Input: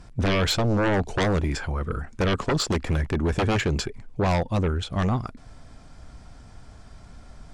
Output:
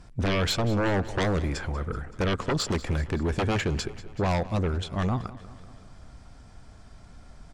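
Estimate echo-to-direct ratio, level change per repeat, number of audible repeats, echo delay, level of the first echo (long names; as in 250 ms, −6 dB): −15.5 dB, −4.5 dB, 4, 190 ms, −17.5 dB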